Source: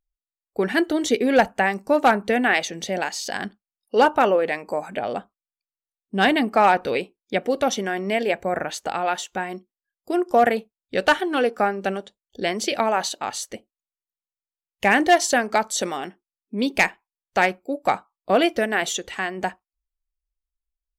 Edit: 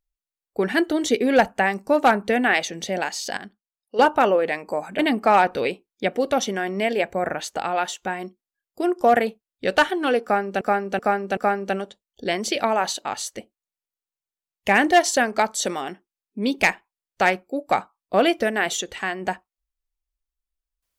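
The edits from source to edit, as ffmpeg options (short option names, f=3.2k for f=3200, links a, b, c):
-filter_complex "[0:a]asplit=7[a][b][c][d][e][f][g];[a]atrim=end=3.372[h];[b]atrim=start=3.368:end=3.992,asetpts=PTS-STARTPTS,volume=-9dB[i];[c]atrim=start=3.988:end=4.992[j];[d]atrim=start=6.288:end=11.912[k];[e]atrim=start=11.528:end=11.912[l];[f]atrim=start=11.528:end=11.912[m];[g]atrim=start=11.528[n];[h][i]acrossfade=d=0.004:c1=hsin:c2=hsin[o];[o][j]acrossfade=d=0.004:c1=hsin:c2=hsin[p];[p][k]acrossfade=d=0.004:c1=hsin:c2=hsin[q];[q][l]acrossfade=d=0.004:c1=hsin:c2=hsin[r];[r][m]acrossfade=d=0.004:c1=hsin:c2=hsin[s];[s][n]acrossfade=d=0.004:c1=hsin:c2=hsin"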